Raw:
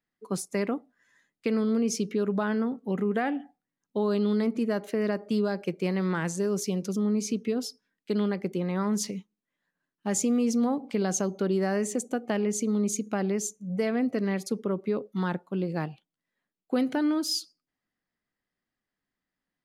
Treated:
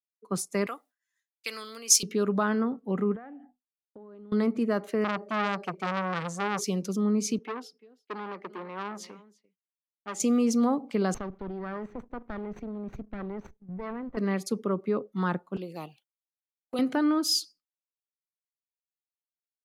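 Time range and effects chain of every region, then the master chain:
0.66–2.03 HPF 820 Hz 6 dB/oct + tilt +4 dB/oct
3.15–4.32 LPF 1800 Hz + notches 50/100/150/200/250 Hz + compressor 12:1, threshold -38 dBFS
5.04–6.64 high shelf 11000 Hz -10.5 dB + comb 5.2 ms, depth 57% + core saturation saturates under 1800 Hz
7.38–10.2 three-band isolator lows -22 dB, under 250 Hz, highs -14 dB, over 3500 Hz + echo 0.343 s -17.5 dB + core saturation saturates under 1500 Hz
11.14–14.17 minimum comb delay 0.5 ms + level quantiser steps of 11 dB + air absorption 330 m
15.56–16.79 RIAA curve recording + envelope flanger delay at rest 12 ms, full sweep at -32 dBFS
whole clip: expander -52 dBFS; dynamic EQ 1200 Hz, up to +7 dB, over -53 dBFS, Q 4.1; three-band expander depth 40%

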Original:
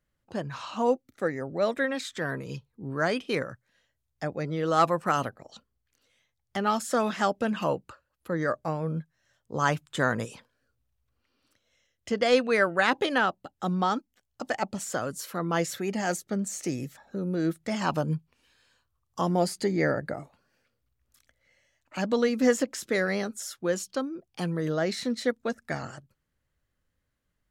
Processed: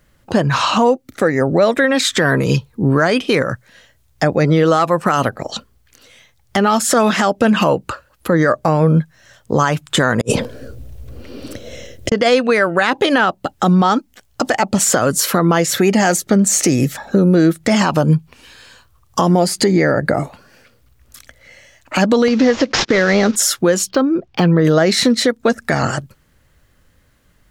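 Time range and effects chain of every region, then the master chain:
10.21–12.12 resonant low shelf 730 Hz +11 dB, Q 1.5 + negative-ratio compressor -39 dBFS, ratio -0.5
22.28–23.36 CVSD 32 kbps + gate -48 dBFS, range -25 dB + upward compressor, threshold -24 dBFS
23.89–24.65 air absorption 160 m + decimation joined by straight lines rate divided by 2×
whole clip: compressor 6:1, threshold -32 dBFS; maximiser +26 dB; gain -3 dB

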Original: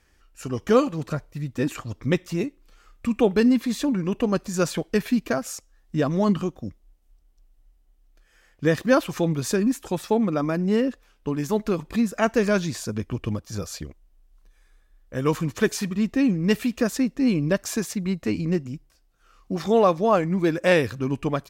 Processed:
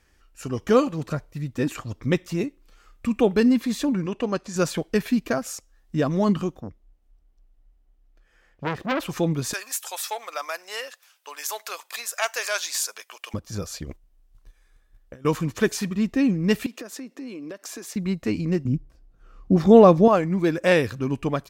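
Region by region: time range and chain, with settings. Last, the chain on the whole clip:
4.06–4.56 LPF 7500 Hz + low shelf 230 Hz -9 dB
6.6–9 de-esser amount 90% + high shelf 3900 Hz -11 dB + core saturation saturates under 2000 Hz
9.53–13.34 HPF 620 Hz 24 dB/oct + tilt +3.5 dB/oct + core saturation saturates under 2200 Hz
13.84–15.25 gate -53 dBFS, range -10 dB + negative-ratio compressor -41 dBFS
16.66–17.96 HPF 260 Hz 24 dB/oct + compressor 8:1, threshold -33 dBFS
18.65–20.08 low shelf 500 Hz +12 dB + mismatched tape noise reduction decoder only
whole clip: dry

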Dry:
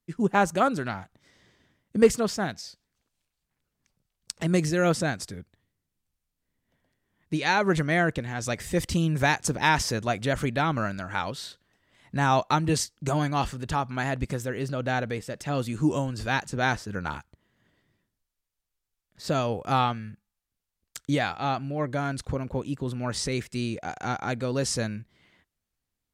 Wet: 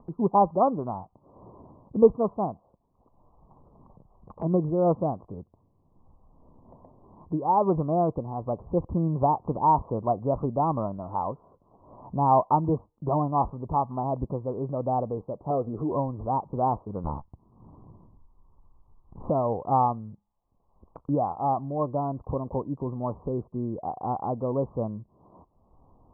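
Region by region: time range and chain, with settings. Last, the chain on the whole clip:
15.5–15.91 notch 920 Hz, Q 10 + compressor 3:1, threshold -29 dBFS + small resonant body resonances 450/640/1300 Hz, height 11 dB, ringing for 25 ms
17.04–19.3 minimum comb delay 0.82 ms + tilt -2 dB/oct
whole clip: steep low-pass 1100 Hz 96 dB/oct; tilt shelf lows -5 dB, about 660 Hz; upward compressor, threshold -36 dBFS; gain +3 dB

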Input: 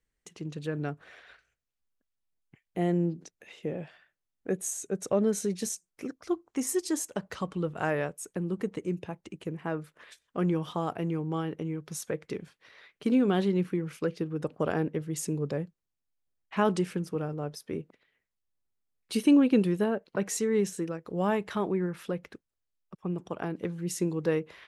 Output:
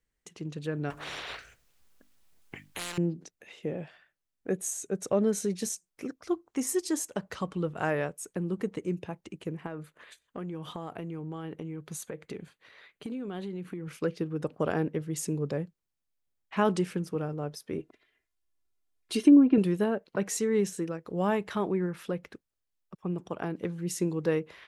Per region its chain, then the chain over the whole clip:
0.9–2.98 notches 50/100/150/200/250/300 Hz + overloaded stage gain 21 dB + spectral compressor 10:1
9.66–13.88 compressor 10:1, threshold -33 dBFS + notch 5400 Hz, Q 5.4
17.78–19.58 comb 2.9 ms, depth 70% + treble ducked by the level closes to 790 Hz, closed at -14 dBFS
whole clip: dry

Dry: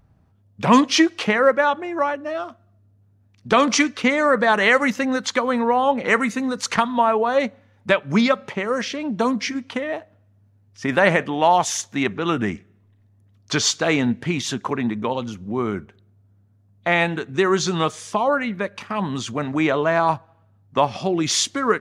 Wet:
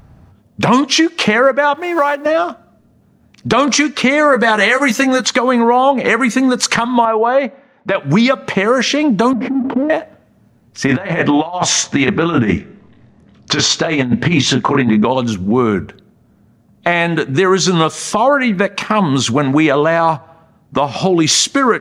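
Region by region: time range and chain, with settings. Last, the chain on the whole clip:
1.74–2.26 G.711 law mismatch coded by A + HPF 430 Hz 6 dB/oct
4.32–5.24 high shelf 4900 Hz +8.5 dB + doubler 14 ms -5 dB
7.05–7.95 HPF 430 Hz 6 dB/oct + tape spacing loss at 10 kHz 29 dB
9.33–9.9 half-waves squared off + ladder band-pass 290 Hz, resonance 35% + sustainer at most 59 dB/s
10.86–15.05 air absorption 100 m + doubler 24 ms -5 dB + negative-ratio compressor -23 dBFS, ratio -0.5
whole clip: notches 50/100 Hz; compressor 3:1, threshold -26 dBFS; maximiser +16.5 dB; gain -1 dB

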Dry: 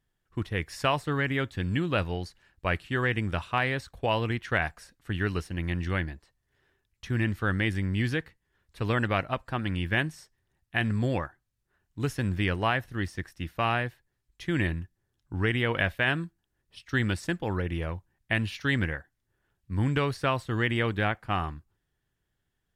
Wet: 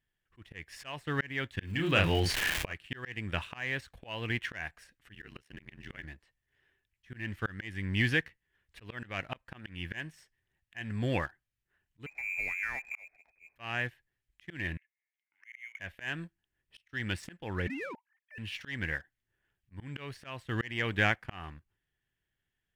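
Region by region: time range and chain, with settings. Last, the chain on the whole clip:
1.61–2.72 doubler 31 ms -5 dB + crackle 420/s -43 dBFS + fast leveller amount 70%
5.14–6.04 HPF 120 Hz 6 dB/oct + ring modulator 35 Hz
12.06–13.56 inverted band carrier 2500 Hz + low shelf 68 Hz +9.5 dB + compressor 3:1, threshold -40 dBFS
14.77–15.8 compressor 3:1, threshold -34 dBFS + ladder band-pass 2200 Hz, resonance 90%
17.67–18.38 sine-wave speech + compressor 5:1, threshold -34 dBFS
whole clip: band shelf 2300 Hz +8 dB 1.2 oct; sample leveller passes 1; auto swell 0.403 s; gain -6 dB

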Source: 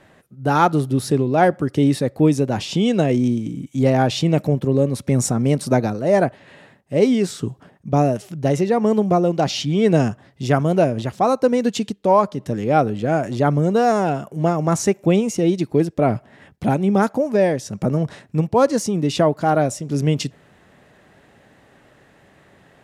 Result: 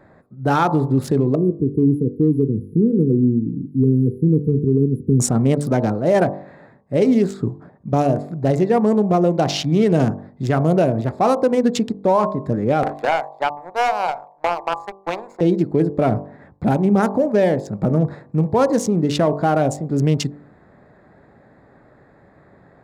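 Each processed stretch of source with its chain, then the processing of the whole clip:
1.35–5.2 short-mantissa float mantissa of 8-bit + brick-wall FIR band-stop 490–9800 Hz
12.83–15.41 resonant high-pass 850 Hz, resonance Q 3.7 + power-law curve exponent 2 + three-band squash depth 100%
whole clip: Wiener smoothing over 15 samples; de-hum 48.68 Hz, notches 24; limiter -11 dBFS; gain +3.5 dB

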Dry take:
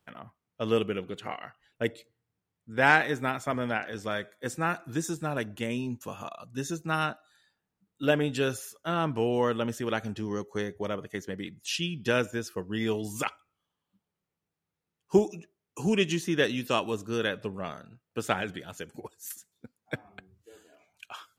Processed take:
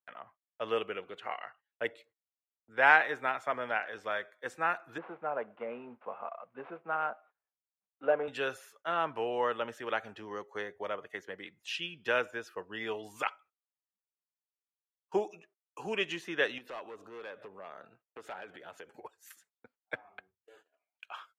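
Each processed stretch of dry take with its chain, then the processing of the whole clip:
4.98–8.28 CVSD 32 kbps + speaker cabinet 190–2000 Hz, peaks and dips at 210 Hz +5 dB, 310 Hz -4 dB, 490 Hz +5 dB, 730 Hz +3 dB, 1800 Hz -9 dB
16.58–18.96 bell 360 Hz +6.5 dB 2.4 oct + overloaded stage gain 21.5 dB + compressor 5:1, threshold -38 dBFS
whole clip: gate -55 dBFS, range -22 dB; three-band isolator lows -20 dB, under 480 Hz, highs -16 dB, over 3100 Hz

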